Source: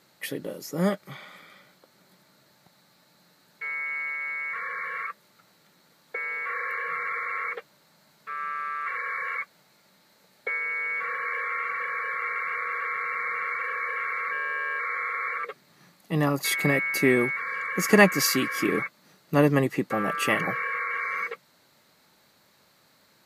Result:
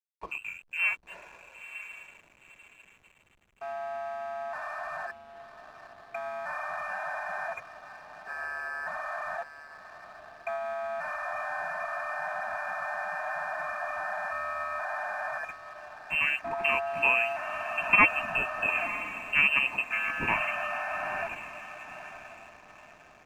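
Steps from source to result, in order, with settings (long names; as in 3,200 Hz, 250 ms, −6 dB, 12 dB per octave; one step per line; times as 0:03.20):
voice inversion scrambler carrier 2,900 Hz
feedback delay with all-pass diffusion 959 ms, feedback 42%, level −11 dB
slack as between gear wheels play −42.5 dBFS
level −4 dB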